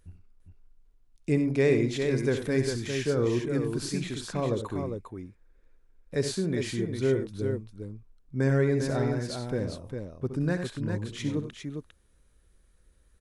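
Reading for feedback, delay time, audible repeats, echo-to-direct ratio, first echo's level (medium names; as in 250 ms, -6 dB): no regular repeats, 67 ms, 2, -4.0 dB, -10.0 dB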